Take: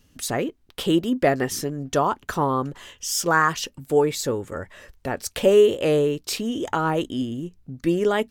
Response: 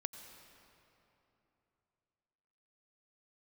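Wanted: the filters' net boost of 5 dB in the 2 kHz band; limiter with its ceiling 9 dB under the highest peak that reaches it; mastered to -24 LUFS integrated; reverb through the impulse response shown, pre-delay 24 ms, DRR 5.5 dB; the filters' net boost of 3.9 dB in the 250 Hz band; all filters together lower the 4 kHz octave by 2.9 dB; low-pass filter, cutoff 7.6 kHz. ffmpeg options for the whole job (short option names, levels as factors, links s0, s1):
-filter_complex "[0:a]lowpass=7600,equalizer=f=250:t=o:g=5,equalizer=f=2000:t=o:g=8,equalizer=f=4000:t=o:g=-7.5,alimiter=limit=0.251:level=0:latency=1,asplit=2[s0][s1];[1:a]atrim=start_sample=2205,adelay=24[s2];[s1][s2]afir=irnorm=-1:irlink=0,volume=0.631[s3];[s0][s3]amix=inputs=2:normalize=0,volume=0.841"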